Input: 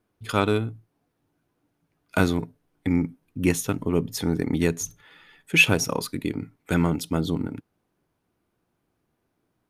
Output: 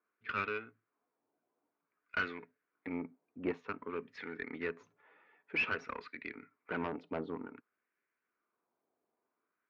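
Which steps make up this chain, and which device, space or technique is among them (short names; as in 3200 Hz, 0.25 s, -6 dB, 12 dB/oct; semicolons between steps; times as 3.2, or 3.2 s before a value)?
wah-wah guitar rig (wah 0.53 Hz 760–1800 Hz, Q 2.4; tube stage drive 30 dB, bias 0.65; speaker cabinet 97–3800 Hz, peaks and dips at 140 Hz -5 dB, 240 Hz +5 dB, 420 Hz +6 dB, 820 Hz -7 dB, 2300 Hz +5 dB, 3400 Hz -7 dB); gain +2.5 dB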